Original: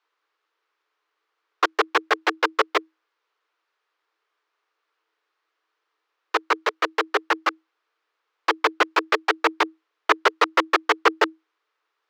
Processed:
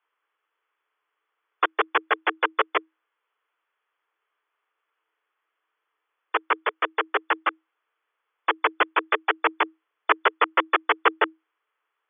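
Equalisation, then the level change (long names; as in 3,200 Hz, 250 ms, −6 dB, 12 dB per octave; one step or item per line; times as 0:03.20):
linear-phase brick-wall low-pass 3,500 Hz
high-frequency loss of the air 97 metres
low-shelf EQ 310 Hz −10.5 dB
0.0 dB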